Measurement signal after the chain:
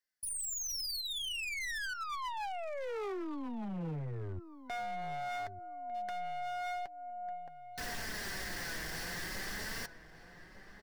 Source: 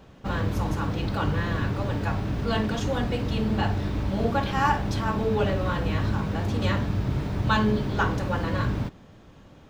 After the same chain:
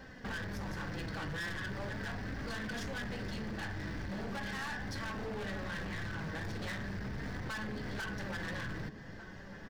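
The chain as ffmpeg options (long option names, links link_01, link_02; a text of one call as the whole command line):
ffmpeg -i in.wav -filter_complex "[0:a]superequalizer=11b=3.98:14b=2.24,acompressor=threshold=-33dB:ratio=3,aeval=exprs='(tanh(44.7*val(0)+0.25)-tanh(0.25))/44.7':channel_layout=same,flanger=delay=3.5:depth=2.9:regen=48:speed=0.39:shape=triangular,asplit=2[link_01][link_02];[link_02]adelay=1200,lowpass=frequency=1700:poles=1,volume=-12.5dB,asplit=2[link_03][link_04];[link_04]adelay=1200,lowpass=frequency=1700:poles=1,volume=0.3,asplit=2[link_05][link_06];[link_06]adelay=1200,lowpass=frequency=1700:poles=1,volume=0.3[link_07];[link_01][link_03][link_05][link_07]amix=inputs=4:normalize=0,aeval=exprs='0.0141*(abs(mod(val(0)/0.0141+3,4)-2)-1)':channel_layout=same,volume=3dB" out.wav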